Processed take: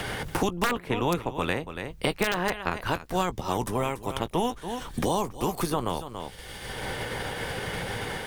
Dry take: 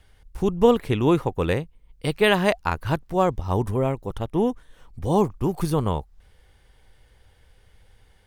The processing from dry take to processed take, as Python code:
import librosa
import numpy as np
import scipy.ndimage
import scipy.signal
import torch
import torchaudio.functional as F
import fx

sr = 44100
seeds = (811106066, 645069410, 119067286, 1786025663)

y = fx.spec_clip(x, sr, under_db=14)
y = fx.doubler(y, sr, ms=17.0, db=-14.0)
y = y + 10.0 ** (-14.5 / 20.0) * np.pad(y, (int(283 * sr / 1000.0), 0))[:len(y)]
y = (np.mod(10.0 ** (6.0 / 20.0) * y + 1.0, 2.0) - 1.0) / 10.0 ** (6.0 / 20.0)
y = fx.band_squash(y, sr, depth_pct=100)
y = F.gain(torch.from_numpy(y), -5.5).numpy()